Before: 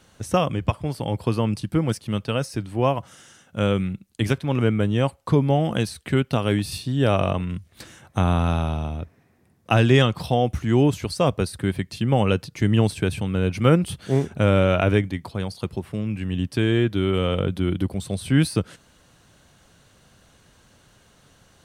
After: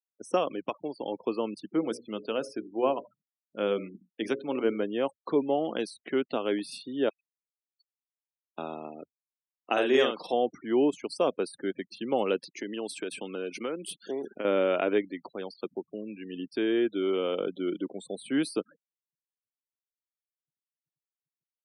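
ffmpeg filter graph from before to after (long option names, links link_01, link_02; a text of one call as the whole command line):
ffmpeg -i in.wav -filter_complex "[0:a]asettb=1/sr,asplit=3[link_01][link_02][link_03];[link_01]atrim=end=1.694[link_04];[link_02]atrim=start=1.69:end=4.84,asetpts=PTS-STARTPTS,afade=type=in:duration=0.004:curve=qsin,afade=type=out:start_time=3.146:duration=0.004:curve=qsin,lowshelf=frequency=380:gain=2,bandreject=frequency=60:width_type=h:width=6,bandreject=frequency=120:width_type=h:width=6,bandreject=frequency=180:width_type=h:width=6,bandreject=frequency=240:width_type=h:width=6,bandreject=frequency=300:width_type=h:width=6,bandreject=frequency=360:width_type=h:width=6,bandreject=frequency=420:width_type=h:width=6,bandreject=frequency=480:width_type=h:width=6,bandreject=frequency=540:width_type=h:width=6,bandreject=frequency=600:width_type=h:width=6,aecho=1:1:84:0.0944,atrim=end_sample=138915[link_05];[link_03]atrim=start=4.836[link_06];[link_04][link_05]acrossfade=duration=0.004:curve1=hsin:curve2=qsin[link_07];[link_07][link_06]acrossfade=duration=0.004:curve1=qsin:curve2=hsin,asettb=1/sr,asplit=3[link_08][link_09][link_10];[link_08]atrim=end=7.094[link_11];[link_09]atrim=start=7.09:end=8.58,asetpts=PTS-STARTPTS,afade=type=in:duration=0.004:curve=qsin,afade=type=out:start_time=1.486:duration=0.004:curve=qsin,bandpass=frequency=4700:width_type=q:width=3.5,acompressor=threshold=-53dB:ratio=1.5:attack=3.2:release=140:knee=1:detection=peak[link_12];[link_10]atrim=start=8.576[link_13];[link_11][link_12]acrossfade=duration=0.004:curve1=hsin:curve2=qsin[link_14];[link_14][link_13]acrossfade=duration=0.004:curve1=qsin:curve2=hsin,asettb=1/sr,asplit=3[link_15][link_16][link_17];[link_15]atrim=end=9.724[link_18];[link_16]atrim=start=9.72:end=10.33,asetpts=PTS-STARTPTS,afade=type=in:duration=0.004:curve=qsin,afade=type=out:start_time=0.606:duration=0.004:curve=qsin,highpass=frequency=270:poles=1,asplit=2[link_19][link_20];[link_20]adelay=46,volume=-3dB[link_21];[link_19][link_21]amix=inputs=2:normalize=0,atrim=end_sample=26901[link_22];[link_17]atrim=start=10.326[link_23];[link_18][link_22]acrossfade=duration=0.004:curve1=hsin:curve2=qsin[link_24];[link_24][link_23]acrossfade=duration=0.004:curve1=qsin:curve2=hsin,asettb=1/sr,asplit=3[link_25][link_26][link_27];[link_25]atrim=end=12.414[link_28];[link_26]atrim=start=12.41:end=14.45,asetpts=PTS-STARTPTS,afade=type=in:duration=0.004:curve=qsin,afade=type=out:start_time=2.036:duration=0.004:curve=qsin,highpass=150,highshelf=frequency=2000:gain=5.5,acompressor=threshold=-22dB:ratio=8:attack=3.2:release=140:knee=1:detection=peak[link_29];[link_27]atrim=start=14.446[link_30];[link_28][link_29]acrossfade=duration=0.004:curve1=hsin:curve2=qsin[link_31];[link_31][link_30]acrossfade=duration=0.004:curve1=qsin:curve2=hsin,afftfilt=real='re*gte(hypot(re,im),0.0178)':imag='im*gte(hypot(re,im),0.0178)':win_size=1024:overlap=0.75,highpass=frequency=260:width=0.5412,highpass=frequency=260:width=1.3066,equalizer=frequency=390:width_type=o:width=1.4:gain=5.5,volume=-8dB" out.wav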